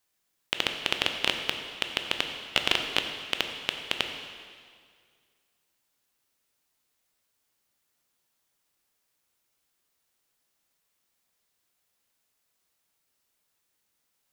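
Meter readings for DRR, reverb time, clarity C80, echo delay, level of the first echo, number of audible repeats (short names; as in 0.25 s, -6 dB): 4.5 dB, 2.0 s, 7.0 dB, none, none, none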